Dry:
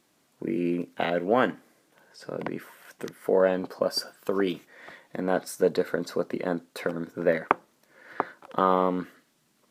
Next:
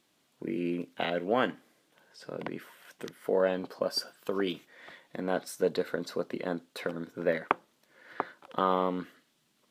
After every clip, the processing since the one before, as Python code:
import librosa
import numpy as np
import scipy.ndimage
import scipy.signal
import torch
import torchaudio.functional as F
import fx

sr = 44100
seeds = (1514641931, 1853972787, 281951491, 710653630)

y = fx.peak_eq(x, sr, hz=3300.0, db=6.0, octaves=0.88)
y = y * librosa.db_to_amplitude(-5.0)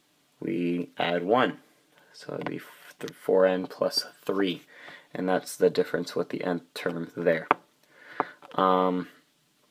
y = x + 0.4 * np.pad(x, (int(6.8 * sr / 1000.0), 0))[:len(x)]
y = y * librosa.db_to_amplitude(4.0)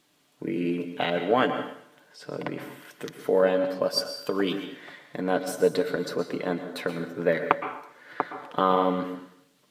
y = fx.rev_plate(x, sr, seeds[0], rt60_s=0.71, hf_ratio=0.9, predelay_ms=105, drr_db=8.0)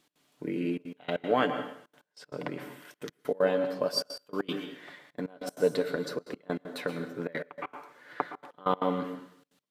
y = fx.step_gate(x, sr, bpm=194, pattern='x.xxxxxxxx.x..', floor_db=-24.0, edge_ms=4.5)
y = y * librosa.db_to_amplitude(-3.5)